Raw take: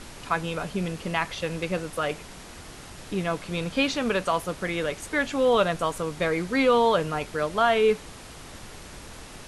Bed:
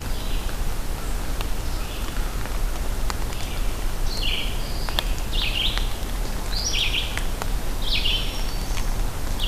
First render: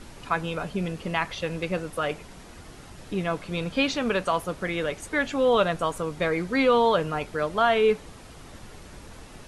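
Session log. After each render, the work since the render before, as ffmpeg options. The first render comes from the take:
ffmpeg -i in.wav -af "afftdn=noise_reduction=6:noise_floor=-44" out.wav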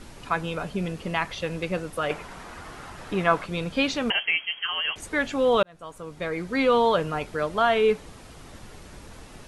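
ffmpeg -i in.wav -filter_complex "[0:a]asettb=1/sr,asplit=3[link_01][link_02][link_03];[link_01]atrim=end=2.104[link_04];[link_02]atrim=start=2.1:end=3.46,asetpts=PTS-STARTPTS,afade=type=in:duration=0.004:curve=qsin,afade=type=out:start_time=1.356:duration=0.004:curve=qsin,equalizer=frequency=1200:width_type=o:width=2:gain=11[link_05];[link_03]atrim=start=3.456[link_06];[link_04][link_05]acrossfade=duration=0.004:curve1=hsin:curve2=qsin[link_07];[link_07][link_06]acrossfade=duration=0.004:curve1=qsin:curve2=hsin,asettb=1/sr,asplit=3[link_08][link_09][link_10];[link_08]atrim=end=4.104[link_11];[link_09]atrim=start=4.1:end=4.96,asetpts=PTS-STARTPTS,afade=type=in:duration=0.004:curve=qsin,afade=type=out:start_time=0.856:duration=0.004:curve=qsin,lowpass=frequency=2800:width_type=q:width=0.5098,lowpass=frequency=2800:width_type=q:width=0.6013,lowpass=frequency=2800:width_type=q:width=0.9,lowpass=frequency=2800:width_type=q:width=2.563,afreqshift=-3300[link_12];[link_10]atrim=start=4.956[link_13];[link_11][link_12]acrossfade=duration=0.004:curve1=hsin:curve2=qsin[link_14];[link_14][link_13]acrossfade=duration=0.004:curve1=qsin:curve2=hsin,asplit=2[link_15][link_16];[link_15]atrim=end=5.63,asetpts=PTS-STARTPTS,afade=type=out:start_time=5.626:duration=0.004:curve=hsin[link_17];[link_16]atrim=start=5.63,asetpts=PTS-STARTPTS,afade=type=in:duration=1.1[link_18];[link_17][link_18]concat=n=2:v=0:a=1" out.wav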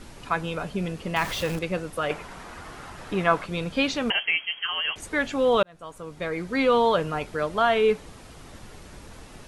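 ffmpeg -i in.wav -filter_complex "[0:a]asettb=1/sr,asplit=3[link_01][link_02][link_03];[link_01]atrim=end=1.164[link_04];[link_02]atrim=start=1.16:end=1.59,asetpts=PTS-STARTPTS,afade=type=in:duration=0.004:curve=qsin,afade=type=out:start_time=0.426:duration=0.004:curve=qsin,aeval=exprs='val(0)+0.5*0.0316*sgn(val(0))':channel_layout=same[link_05];[link_03]atrim=start=1.586[link_06];[link_04][link_05]acrossfade=duration=0.004:curve1=hsin:curve2=qsin[link_07];[link_07][link_06]acrossfade=duration=0.004:curve1=qsin:curve2=hsin" out.wav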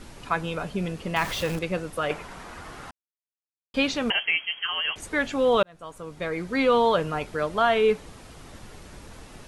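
ffmpeg -i in.wav -filter_complex "[0:a]asplit=3[link_01][link_02][link_03];[link_01]atrim=end=2.91,asetpts=PTS-STARTPTS,afade=type=out:start_time=2.906:duration=0.004:curve=hsin[link_04];[link_02]atrim=start=2.91:end=3.74,asetpts=PTS-STARTPTS,volume=0[link_05];[link_03]atrim=start=3.74,asetpts=PTS-STARTPTS,afade=type=in:duration=0.004:curve=hsin[link_06];[link_04][link_05][link_06]concat=n=3:v=0:a=1" out.wav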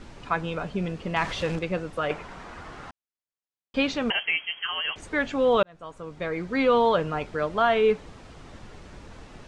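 ffmpeg -i in.wav -af "lowpass=frequency=8600:width=0.5412,lowpass=frequency=8600:width=1.3066,highshelf=frequency=5300:gain=-9" out.wav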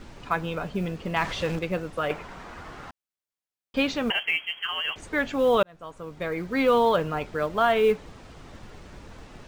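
ffmpeg -i in.wav -af "acrusher=bits=8:mode=log:mix=0:aa=0.000001" out.wav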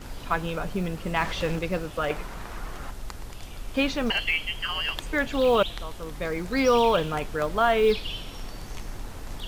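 ffmpeg -i in.wav -i bed.wav -filter_complex "[1:a]volume=-12dB[link_01];[0:a][link_01]amix=inputs=2:normalize=0" out.wav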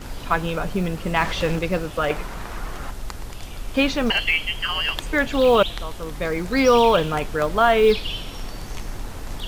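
ffmpeg -i in.wav -af "volume=5dB" out.wav

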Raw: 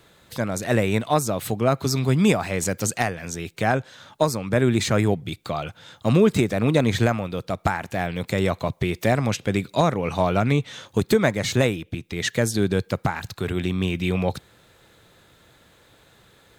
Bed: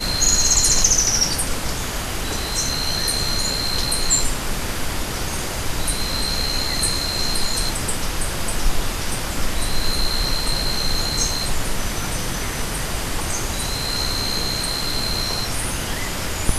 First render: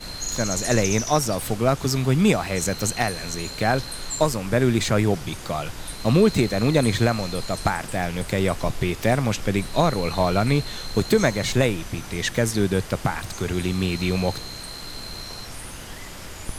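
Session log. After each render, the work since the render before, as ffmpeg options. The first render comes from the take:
ffmpeg -i in.wav -i bed.wav -filter_complex "[1:a]volume=-12.5dB[link_01];[0:a][link_01]amix=inputs=2:normalize=0" out.wav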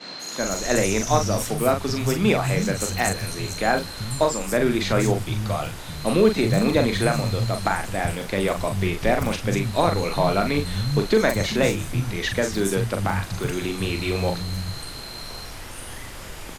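ffmpeg -i in.wav -filter_complex "[0:a]asplit=2[link_01][link_02];[link_02]adelay=41,volume=-6dB[link_03];[link_01][link_03]amix=inputs=2:normalize=0,acrossover=split=180|5900[link_04][link_05][link_06];[link_06]adelay=190[link_07];[link_04]adelay=390[link_08];[link_08][link_05][link_07]amix=inputs=3:normalize=0" out.wav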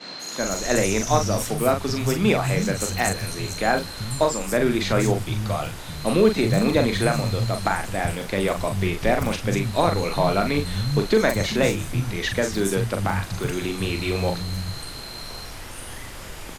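ffmpeg -i in.wav -af anull out.wav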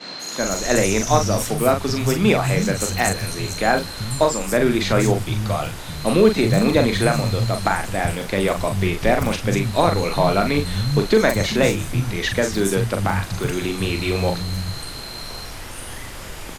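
ffmpeg -i in.wav -af "volume=3dB" out.wav

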